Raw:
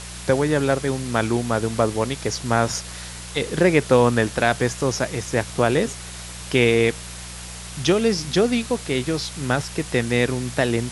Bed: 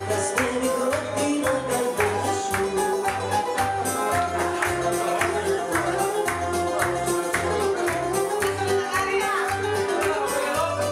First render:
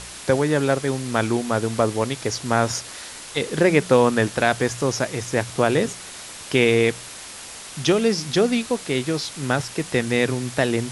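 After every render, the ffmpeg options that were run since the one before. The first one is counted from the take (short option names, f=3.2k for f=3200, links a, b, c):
-af "bandreject=f=60:t=h:w=4,bandreject=f=120:t=h:w=4,bandreject=f=180:t=h:w=4"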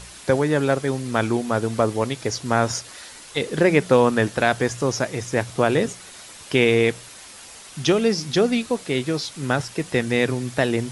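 -af "afftdn=nr=6:nf=-38"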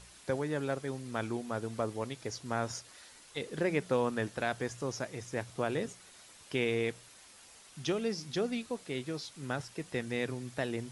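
-af "volume=-14dB"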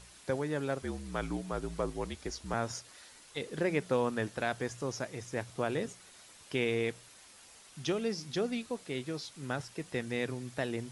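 -filter_complex "[0:a]asettb=1/sr,asplit=3[a][b][c];[a]atrim=end=0.824[d];[b]atrim=start=0.82:end=2.54,asetpts=PTS-STARTPTS,afade=t=in:d=0.004:c=qsin,afade=t=out:st=1.716:d=0.004:c=qsin,afreqshift=-56[e];[c]atrim=start=2.536[f];[d][e]acrossfade=d=0.004:c1=hsin:c2=qsin[g];[g][f]acrossfade=d=0.004:c1=qsin:c2=hsin"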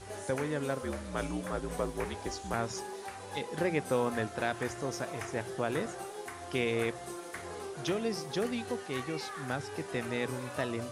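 -filter_complex "[1:a]volume=-18.5dB[a];[0:a][a]amix=inputs=2:normalize=0"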